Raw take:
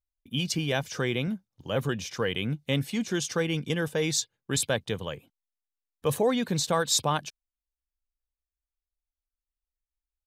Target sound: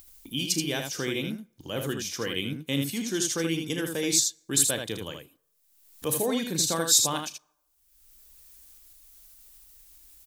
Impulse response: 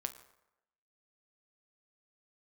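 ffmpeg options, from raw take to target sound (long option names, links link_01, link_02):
-filter_complex "[0:a]equalizer=frequency=310:width_type=o:width=0.59:gain=10,acompressor=mode=upward:threshold=-31dB:ratio=2.5,aecho=1:1:36|79:0.251|0.531,asplit=2[link_01][link_02];[1:a]atrim=start_sample=2205[link_03];[link_02][link_03]afir=irnorm=-1:irlink=0,volume=-14dB[link_04];[link_01][link_04]amix=inputs=2:normalize=0,crystalizer=i=4:c=0,volume=-8.5dB"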